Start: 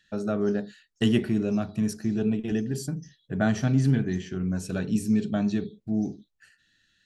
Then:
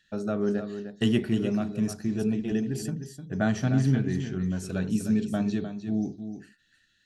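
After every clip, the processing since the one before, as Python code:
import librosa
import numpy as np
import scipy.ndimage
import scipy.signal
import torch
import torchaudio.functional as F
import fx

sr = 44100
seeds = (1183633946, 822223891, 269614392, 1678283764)

y = x + 10.0 ** (-9.5 / 20.0) * np.pad(x, (int(304 * sr / 1000.0), 0))[:len(x)]
y = y * librosa.db_to_amplitude(-1.5)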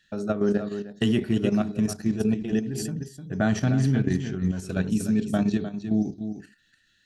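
y = fx.level_steps(x, sr, step_db=9)
y = y * librosa.db_to_amplitude(6.0)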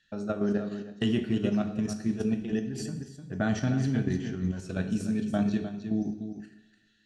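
y = scipy.signal.sosfilt(scipy.signal.butter(2, 7200.0, 'lowpass', fs=sr, output='sos'), x)
y = fx.rev_double_slope(y, sr, seeds[0], early_s=0.78, late_s=2.2, knee_db=-20, drr_db=7.5)
y = y * librosa.db_to_amplitude(-4.5)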